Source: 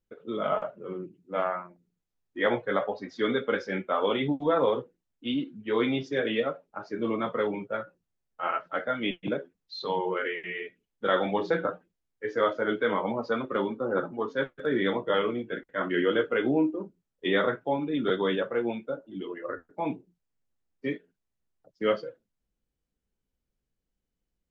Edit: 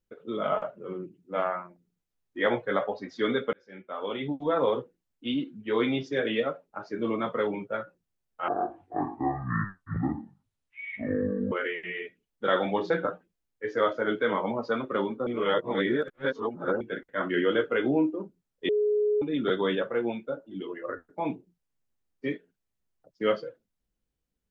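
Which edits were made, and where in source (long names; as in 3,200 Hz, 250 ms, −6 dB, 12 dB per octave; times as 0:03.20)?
0:03.53–0:04.75: fade in
0:08.48–0:10.12: play speed 54%
0:13.87–0:15.41: reverse
0:17.29–0:17.82: beep over 419 Hz −21.5 dBFS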